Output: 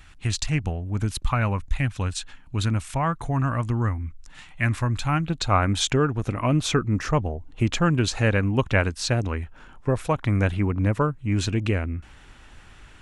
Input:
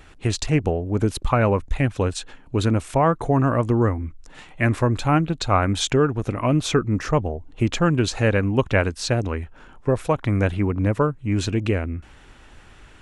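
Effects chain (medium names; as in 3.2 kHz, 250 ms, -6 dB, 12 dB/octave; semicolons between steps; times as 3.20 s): peaking EQ 440 Hz -14.5 dB 1.6 oct, from 5.28 s -4.5 dB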